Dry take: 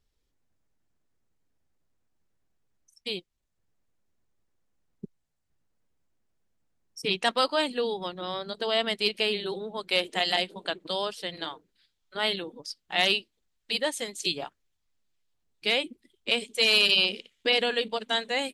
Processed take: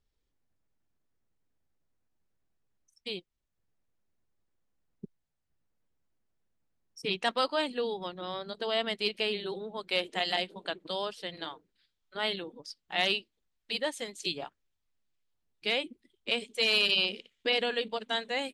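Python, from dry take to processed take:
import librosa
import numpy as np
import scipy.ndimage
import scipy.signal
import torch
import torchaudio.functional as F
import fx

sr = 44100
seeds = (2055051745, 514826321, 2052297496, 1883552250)

y = fx.high_shelf(x, sr, hz=7100.0, db=-8.0)
y = y * 10.0 ** (-3.5 / 20.0)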